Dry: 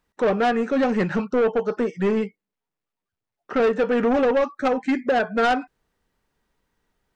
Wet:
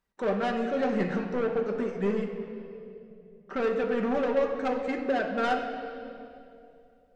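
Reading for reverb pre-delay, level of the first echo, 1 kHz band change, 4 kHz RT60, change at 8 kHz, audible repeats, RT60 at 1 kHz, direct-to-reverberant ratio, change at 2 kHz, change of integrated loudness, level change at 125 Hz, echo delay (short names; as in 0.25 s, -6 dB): 5 ms, none, -7.0 dB, 2.1 s, n/a, none, 2.3 s, 2.5 dB, -7.0 dB, -7.0 dB, -5.0 dB, none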